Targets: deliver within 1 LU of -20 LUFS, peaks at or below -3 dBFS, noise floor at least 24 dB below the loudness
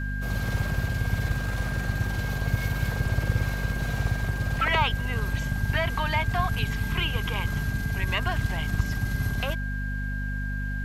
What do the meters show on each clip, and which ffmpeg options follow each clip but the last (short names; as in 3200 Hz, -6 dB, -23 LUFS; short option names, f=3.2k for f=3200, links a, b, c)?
hum 50 Hz; harmonics up to 250 Hz; hum level -27 dBFS; steady tone 1600 Hz; tone level -35 dBFS; loudness -28.0 LUFS; peak -8.5 dBFS; loudness target -20.0 LUFS
-> -af "bandreject=f=50:t=h:w=4,bandreject=f=100:t=h:w=4,bandreject=f=150:t=h:w=4,bandreject=f=200:t=h:w=4,bandreject=f=250:t=h:w=4"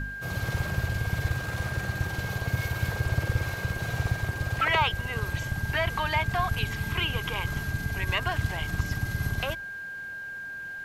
hum none; steady tone 1600 Hz; tone level -35 dBFS
-> -af "bandreject=f=1.6k:w=30"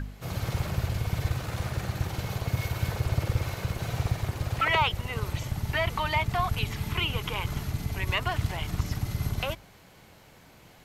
steady tone none; loudness -30.0 LUFS; peak -10.5 dBFS; loudness target -20.0 LUFS
-> -af "volume=10dB,alimiter=limit=-3dB:level=0:latency=1"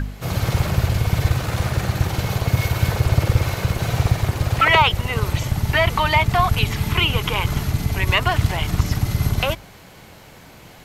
loudness -20.0 LUFS; peak -3.0 dBFS; noise floor -44 dBFS